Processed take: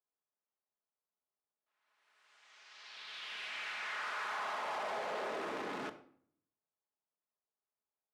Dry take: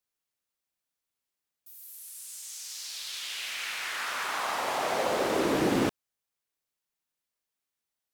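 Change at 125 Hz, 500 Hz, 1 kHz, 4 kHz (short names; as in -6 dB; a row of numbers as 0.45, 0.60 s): -21.5, -12.5, -8.0, -11.0 dB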